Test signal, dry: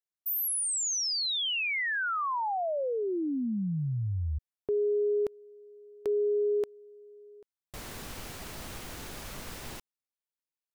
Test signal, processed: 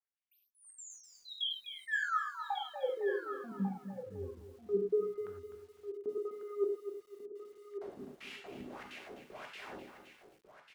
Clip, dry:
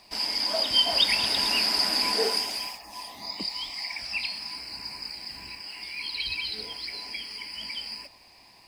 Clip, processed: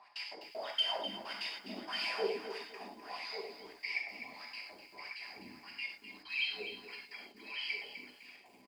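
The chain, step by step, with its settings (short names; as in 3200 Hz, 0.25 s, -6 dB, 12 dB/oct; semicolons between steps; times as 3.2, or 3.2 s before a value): in parallel at -1 dB: compressor 12:1, threshold -35 dBFS; on the sum: soft clip -22.5 dBFS; step gate "x.x.x..xx.xxxx" 192 bpm -60 dB; wah 1.6 Hz 240–2800 Hz, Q 4.2; on a send: echo 1.145 s -10.5 dB; on the sum: non-linear reverb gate 0.13 s flat, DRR 1 dB; lo-fi delay 0.253 s, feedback 35%, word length 10-bit, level -10 dB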